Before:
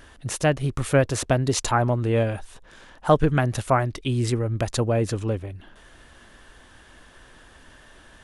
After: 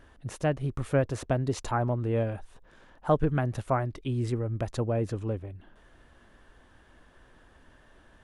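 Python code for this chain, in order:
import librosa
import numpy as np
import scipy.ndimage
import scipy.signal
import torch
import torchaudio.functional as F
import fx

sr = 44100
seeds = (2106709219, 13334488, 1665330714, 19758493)

y = fx.high_shelf(x, sr, hz=2100.0, db=-10.5)
y = y * librosa.db_to_amplitude(-5.5)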